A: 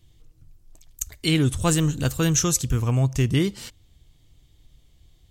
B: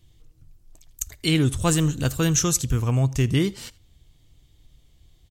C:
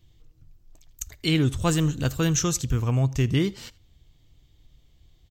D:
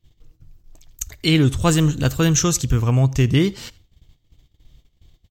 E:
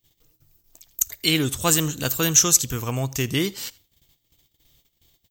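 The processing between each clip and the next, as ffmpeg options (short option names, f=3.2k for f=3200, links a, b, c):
-af "aecho=1:1:82:0.0708"
-af "equalizer=f=10k:t=o:w=0.52:g=-13,volume=-1.5dB"
-af "agate=range=-15dB:threshold=-54dB:ratio=16:detection=peak,volume=6dB"
-af "aemphasis=mode=production:type=bsi,volume=-2.5dB"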